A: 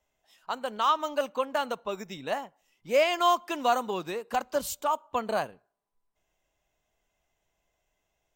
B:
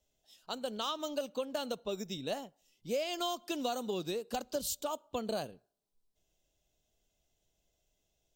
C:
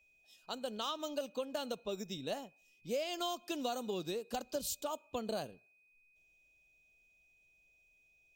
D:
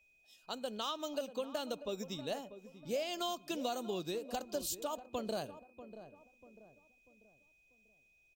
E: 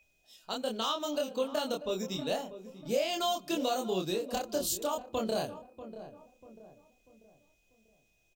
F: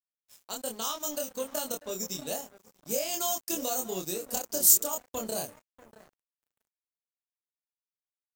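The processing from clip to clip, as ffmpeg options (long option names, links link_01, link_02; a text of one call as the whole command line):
ffmpeg -i in.wav -af "equalizer=frequency=1000:width_type=o:width=1:gain=-12,equalizer=frequency=2000:width_type=o:width=1:gain=-11,equalizer=frequency=4000:width_type=o:width=1:gain=5,acompressor=threshold=-32dB:ratio=6,volume=1dB" out.wav
ffmpeg -i in.wav -af "aeval=exprs='val(0)+0.000562*sin(2*PI*2500*n/s)':channel_layout=same,volume=-2.5dB" out.wav
ffmpeg -i in.wav -filter_complex "[0:a]asplit=2[link_01][link_02];[link_02]adelay=641,lowpass=frequency=990:poles=1,volume=-12dB,asplit=2[link_03][link_04];[link_04]adelay=641,lowpass=frequency=990:poles=1,volume=0.44,asplit=2[link_05][link_06];[link_06]adelay=641,lowpass=frequency=990:poles=1,volume=0.44,asplit=2[link_07][link_08];[link_08]adelay=641,lowpass=frequency=990:poles=1,volume=0.44[link_09];[link_01][link_03][link_05][link_07][link_09]amix=inputs=5:normalize=0" out.wav
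ffmpeg -i in.wav -filter_complex "[0:a]asplit=2[link_01][link_02];[link_02]adelay=27,volume=-2.5dB[link_03];[link_01][link_03]amix=inputs=2:normalize=0,volume=4.5dB" out.wav
ffmpeg -i in.wav -af "aexciter=amount=7.8:drive=3.3:freq=5400,aeval=exprs='sgn(val(0))*max(abs(val(0))-0.00631,0)':channel_layout=same,volume=-2dB" out.wav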